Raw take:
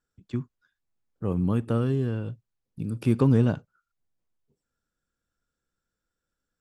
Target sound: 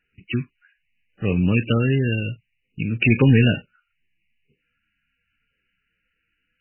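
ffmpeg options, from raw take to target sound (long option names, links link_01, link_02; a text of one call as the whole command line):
ffmpeg -i in.wav -af "highshelf=frequency=1600:width_type=q:width=3:gain=13.5,acontrast=69" -ar 12000 -c:a libmp3lame -b:a 8k out.mp3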